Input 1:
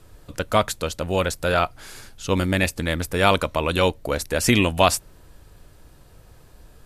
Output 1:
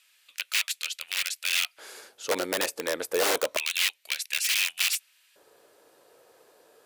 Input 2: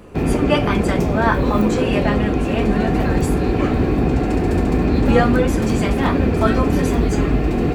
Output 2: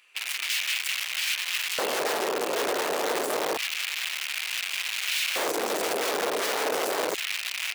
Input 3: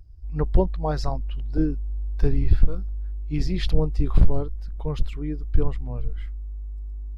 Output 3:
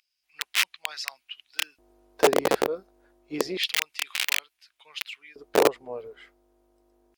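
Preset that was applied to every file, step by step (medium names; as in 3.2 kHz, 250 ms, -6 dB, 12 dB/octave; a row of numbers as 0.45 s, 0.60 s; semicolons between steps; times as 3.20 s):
bass shelf 340 Hz -4.5 dB; integer overflow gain 16 dB; LFO high-pass square 0.28 Hz 450–2500 Hz; normalise loudness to -27 LUFS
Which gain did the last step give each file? -4.0 dB, -7.5 dB, +2.5 dB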